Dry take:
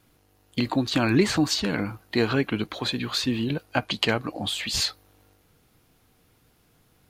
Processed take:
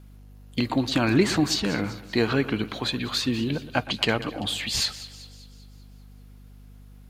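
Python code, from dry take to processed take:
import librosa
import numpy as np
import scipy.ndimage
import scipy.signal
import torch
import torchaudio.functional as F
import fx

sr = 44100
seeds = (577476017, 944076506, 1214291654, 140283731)

p1 = x + fx.echo_split(x, sr, split_hz=2900.0, low_ms=118, high_ms=195, feedback_pct=52, wet_db=-15.0, dry=0)
y = fx.add_hum(p1, sr, base_hz=50, snr_db=20)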